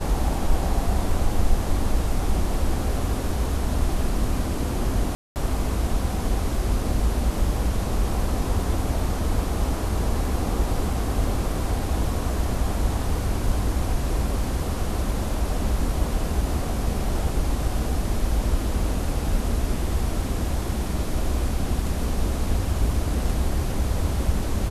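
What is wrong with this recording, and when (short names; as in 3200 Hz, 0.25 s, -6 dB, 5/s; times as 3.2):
5.15–5.36 gap 0.209 s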